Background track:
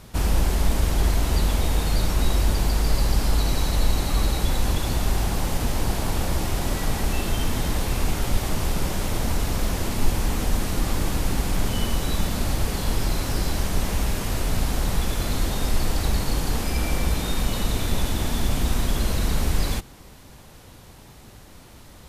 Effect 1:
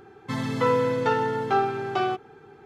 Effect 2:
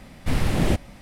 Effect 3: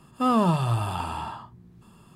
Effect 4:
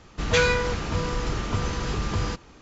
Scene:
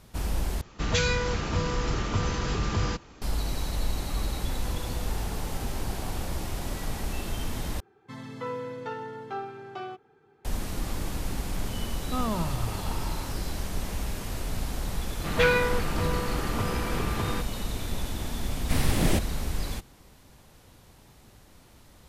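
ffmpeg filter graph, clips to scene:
-filter_complex "[4:a]asplit=2[s0][s1];[1:a]asplit=2[s2][s3];[0:a]volume=0.398[s4];[s0]acrossover=split=230|3000[s5][s6][s7];[s6]acompressor=threshold=0.0501:ratio=6:attack=3.2:release=140:knee=2.83:detection=peak[s8];[s5][s8][s7]amix=inputs=3:normalize=0[s9];[s2]acompressor=threshold=0.0355:ratio=6:attack=3.2:release=140:knee=1:detection=peak[s10];[s1]highpass=120,lowpass=3100[s11];[2:a]highshelf=f=5000:g=10[s12];[s4]asplit=3[s13][s14][s15];[s13]atrim=end=0.614[s16];[s9]atrim=end=2.61,asetpts=PTS-STARTPTS,volume=0.944[s17];[s14]atrim=start=3.216:end=7.804[s18];[s3]atrim=end=2.65,asetpts=PTS-STARTPTS,volume=0.237[s19];[s15]atrim=start=10.446[s20];[s10]atrim=end=2.65,asetpts=PTS-STARTPTS,volume=0.188,afade=t=in:d=0.004:c=hsin,afade=t=out:st=2.646:d=0.004:c=hsin,adelay=4040[s21];[3:a]atrim=end=2.15,asetpts=PTS-STARTPTS,volume=0.355,afade=t=in:d=0.004:c=hsin,afade=t=out:st=2.146:d=0.004:c=hsin,adelay=11910[s22];[s11]atrim=end=2.61,asetpts=PTS-STARTPTS,volume=0.944,afade=t=in:d=0.004:c=hsin,afade=t=out:st=2.606:d=0.004:c=hsin,adelay=15060[s23];[s12]atrim=end=1.01,asetpts=PTS-STARTPTS,volume=0.708,afade=t=in:d=0.004:c=hsin,afade=t=out:st=1.006:d=0.004:c=hsin,adelay=18430[s24];[s16][s17]acrossfade=d=0.004:c1=hsin:c2=hsin[s25];[s25][s18]acrossfade=d=0.004:c1=hsin:c2=hsin[s26];[s26][s19]acrossfade=d=0.004:c1=hsin:c2=hsin[s27];[s27][s20]acrossfade=d=0.004:c1=hsin:c2=hsin[s28];[s28][s21][s22][s23][s24]amix=inputs=5:normalize=0"

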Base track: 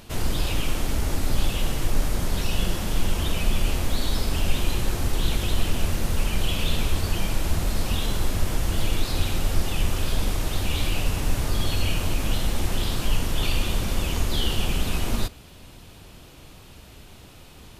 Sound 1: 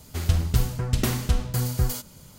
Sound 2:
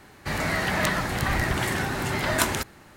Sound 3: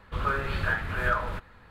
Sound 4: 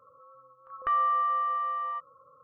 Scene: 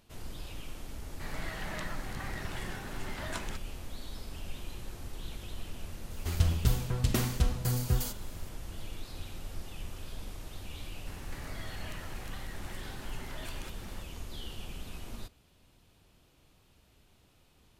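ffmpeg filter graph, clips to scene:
-filter_complex "[2:a]asplit=2[s0][s1];[0:a]volume=0.126[s2];[s0]acrossover=split=8900[s3][s4];[s4]acompressor=threshold=0.00631:ratio=4:attack=1:release=60[s5];[s3][s5]amix=inputs=2:normalize=0[s6];[s1]acompressor=threshold=0.00631:ratio=6:attack=3.2:release=140:knee=1:detection=peak[s7];[s6]atrim=end=2.96,asetpts=PTS-STARTPTS,volume=0.168,afade=t=in:d=0.004:c=hsin,afade=t=out:st=2.956:d=0.004:c=hsin,adelay=940[s8];[1:a]atrim=end=2.38,asetpts=PTS-STARTPTS,volume=0.562,afade=t=in:d=0.004:c=hsin,afade=t=out:st=2.376:d=0.004:c=hsin,adelay=6110[s9];[s7]atrim=end=2.96,asetpts=PTS-STARTPTS,volume=0.841,afade=t=in:d=0.004:c=hsin,afade=t=out:st=2.956:d=0.004:c=hsin,adelay=11070[s10];[s2][s8][s9][s10]amix=inputs=4:normalize=0"

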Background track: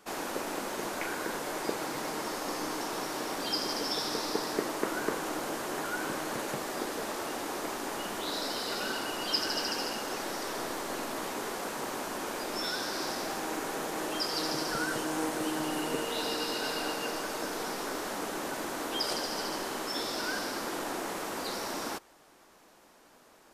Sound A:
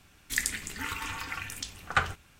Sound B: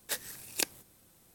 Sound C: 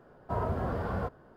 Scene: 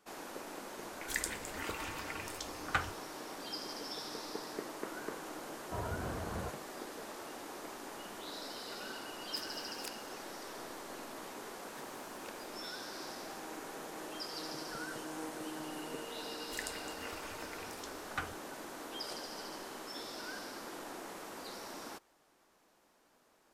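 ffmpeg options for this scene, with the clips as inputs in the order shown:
-filter_complex "[1:a]asplit=2[s0][s1];[2:a]asplit=2[s2][s3];[0:a]volume=0.299[s4];[s3]acrossover=split=3300[s5][s6];[s6]acompressor=threshold=0.00631:ratio=4:attack=1:release=60[s7];[s5][s7]amix=inputs=2:normalize=0[s8];[s0]atrim=end=2.39,asetpts=PTS-STARTPTS,volume=0.422,afade=t=in:d=0.004:c=hsin,afade=t=out:st=2.386:d=0.004:c=hsin,adelay=780[s9];[3:a]atrim=end=1.36,asetpts=PTS-STARTPTS,volume=0.376,afade=t=in:d=0.004:c=hsin,afade=t=out:st=1.356:d=0.004:c=hsin,adelay=5420[s10];[s2]atrim=end=1.34,asetpts=PTS-STARTPTS,volume=0.15,afade=t=in:d=0.004:c=hsin,afade=t=out:st=1.336:d=0.004:c=hsin,adelay=9250[s11];[s8]atrim=end=1.34,asetpts=PTS-STARTPTS,volume=0.158,afade=t=in:d=0.004:c=hsin,afade=t=out:st=1.336:d=0.004:c=hsin,adelay=11660[s12];[s1]atrim=end=2.39,asetpts=PTS-STARTPTS,volume=0.211,afade=t=in:d=0.004:c=hsin,afade=t=out:st=2.386:d=0.004:c=hsin,adelay=16210[s13];[s4][s9][s10][s11][s12][s13]amix=inputs=6:normalize=0"

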